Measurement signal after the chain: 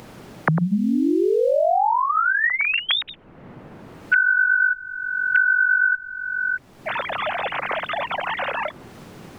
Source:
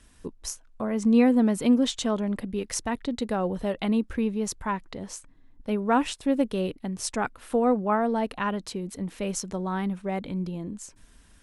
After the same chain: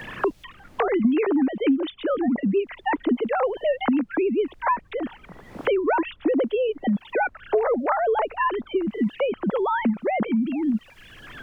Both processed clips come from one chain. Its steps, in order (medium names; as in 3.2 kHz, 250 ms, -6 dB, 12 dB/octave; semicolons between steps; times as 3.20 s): formants replaced by sine waves; added noise brown -64 dBFS; three bands compressed up and down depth 100%; trim +3.5 dB